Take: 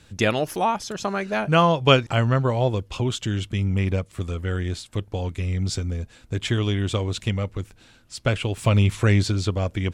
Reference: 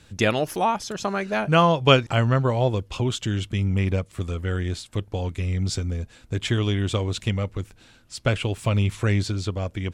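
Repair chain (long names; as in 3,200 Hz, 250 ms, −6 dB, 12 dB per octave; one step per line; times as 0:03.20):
level 0 dB, from 0:08.57 −3.5 dB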